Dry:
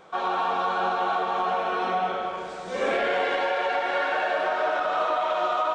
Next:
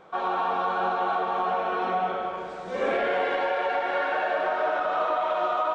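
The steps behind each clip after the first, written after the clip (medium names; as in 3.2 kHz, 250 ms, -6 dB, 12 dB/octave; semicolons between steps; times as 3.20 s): treble shelf 3.7 kHz -11 dB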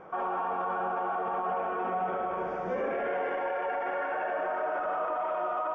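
peak limiter -27 dBFS, peak gain reduction 11 dB; boxcar filter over 11 samples; trim +4 dB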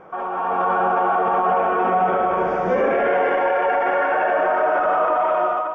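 level rider gain up to 8.5 dB; trim +4 dB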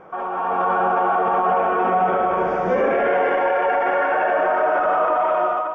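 no audible change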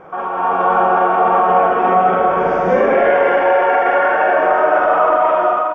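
doubling 45 ms -3.5 dB; trim +4 dB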